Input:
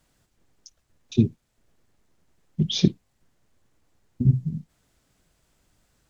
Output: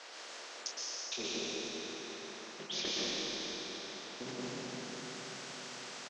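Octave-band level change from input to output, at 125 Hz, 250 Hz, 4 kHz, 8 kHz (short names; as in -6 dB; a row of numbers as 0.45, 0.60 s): -29.5 dB, -17.5 dB, -1.5 dB, n/a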